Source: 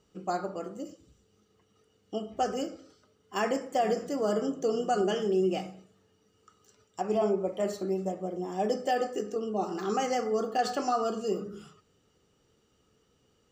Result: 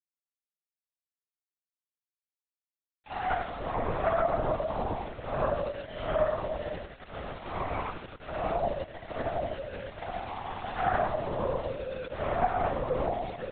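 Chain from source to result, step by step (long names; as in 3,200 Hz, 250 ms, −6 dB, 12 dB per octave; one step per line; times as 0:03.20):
wavefolder on the positive side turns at −27 dBFS
Butterworth high-pass 510 Hz 36 dB per octave
treble cut that deepens with the level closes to 750 Hz, closed at −30 dBFS
dynamic equaliser 2,400 Hz, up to +4 dB, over −49 dBFS, Q 0.97
in parallel at −2.5 dB: brickwall limiter −29.5 dBFS, peak gain reduction 8 dB
on the sum: extreme stretch with random phases 4.8×, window 0.10 s, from 0:06.32
centre clipping without the shift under −40.5 dBFS
convolution reverb RT60 0.60 s, pre-delay 94 ms, DRR 17.5 dB
linear-prediction vocoder at 8 kHz whisper
level +1.5 dB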